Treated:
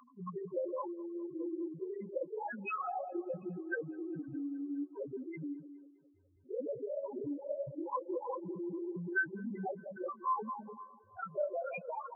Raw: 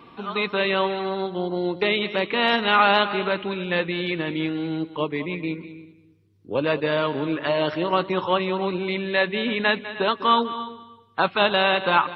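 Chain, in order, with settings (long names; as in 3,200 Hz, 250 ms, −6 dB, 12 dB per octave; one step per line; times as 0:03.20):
low-shelf EQ 230 Hz +5 dB
mains-hum notches 60/120/180/240/300 Hz
downward compressor 6 to 1, threshold −21 dBFS, peak gain reduction 8.5 dB
auto-filter low-pass sine 1.2 Hz 670–3,900 Hz
spectral peaks only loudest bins 1
phase-vocoder pitch shift with formants kept −2 semitones
on a send: delay with a band-pass on its return 206 ms, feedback 71%, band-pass 720 Hz, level −23 dB
on the sum: level −2 dB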